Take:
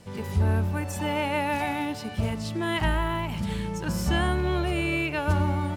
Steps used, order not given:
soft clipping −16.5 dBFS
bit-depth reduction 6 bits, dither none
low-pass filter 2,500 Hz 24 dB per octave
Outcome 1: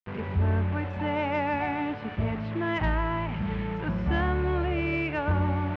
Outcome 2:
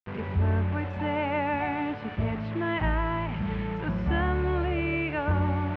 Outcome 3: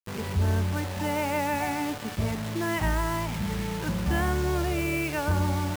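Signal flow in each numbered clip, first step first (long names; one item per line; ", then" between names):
bit-depth reduction, then low-pass filter, then soft clipping
bit-depth reduction, then soft clipping, then low-pass filter
low-pass filter, then bit-depth reduction, then soft clipping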